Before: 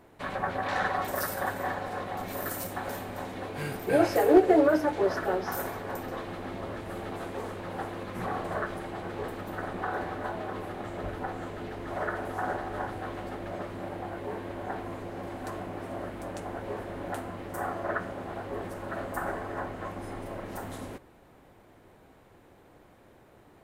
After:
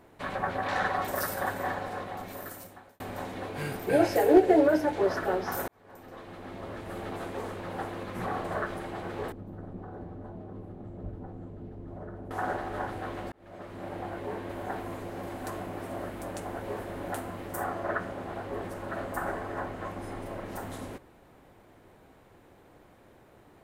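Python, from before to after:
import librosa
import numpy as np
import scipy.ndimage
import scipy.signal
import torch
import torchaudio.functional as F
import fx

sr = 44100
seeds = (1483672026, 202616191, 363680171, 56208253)

y = fx.peak_eq(x, sr, hz=1200.0, db=-7.5, octaves=0.31, at=(3.91, 4.95))
y = fx.curve_eq(y, sr, hz=(180.0, 690.0, 1900.0), db=(0, -13, -24), at=(9.32, 12.31))
y = fx.high_shelf(y, sr, hz=8700.0, db=9.0, at=(14.49, 17.64))
y = fx.edit(y, sr, fx.fade_out_span(start_s=1.78, length_s=1.22),
    fx.fade_in_span(start_s=5.68, length_s=1.39),
    fx.fade_in_span(start_s=13.32, length_s=0.66), tone=tone)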